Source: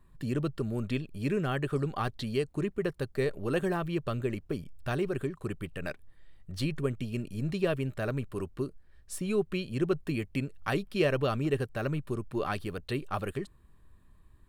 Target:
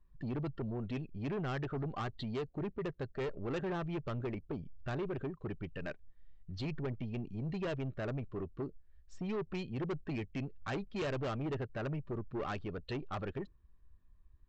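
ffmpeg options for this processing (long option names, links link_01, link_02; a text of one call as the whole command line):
ffmpeg -i in.wav -af "afftdn=noise_reduction=12:noise_floor=-44,lowpass=4300,aresample=16000,asoftclip=type=tanh:threshold=-31dB,aresample=44100,volume=-2dB" out.wav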